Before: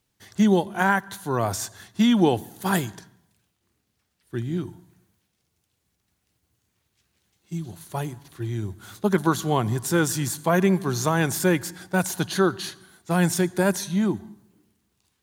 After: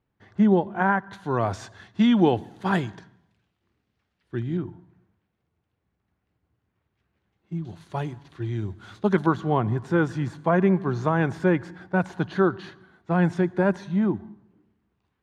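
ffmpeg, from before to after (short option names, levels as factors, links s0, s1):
-af "asetnsamples=n=441:p=0,asendcmd='1.13 lowpass f 3000;4.57 lowpass f 1700;7.65 lowpass f 3600;9.26 lowpass f 1800',lowpass=1600"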